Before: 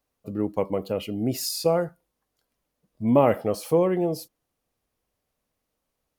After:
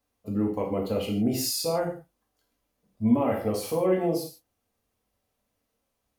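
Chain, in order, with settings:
brickwall limiter −16.5 dBFS, peak gain reduction 10.5 dB
reverb whose tail is shaped and stops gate 180 ms falling, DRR −1.5 dB
level −2.5 dB

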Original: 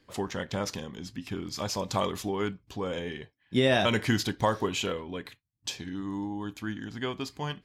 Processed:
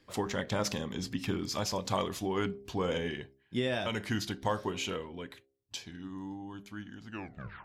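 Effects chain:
turntable brake at the end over 0.68 s
source passing by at 0:01.73, 11 m/s, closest 9.6 metres
hum removal 67.06 Hz, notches 11
speech leveller within 5 dB 0.5 s
level +2 dB

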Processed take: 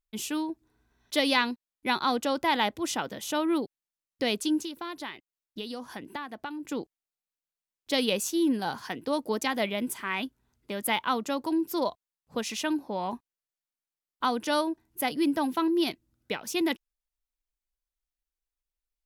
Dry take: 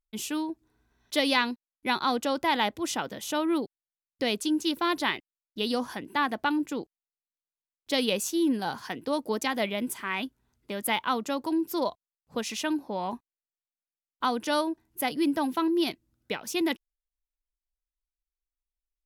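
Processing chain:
0:04.58–0:06.65: downward compressor, threshold −35 dBFS, peak gain reduction 13 dB

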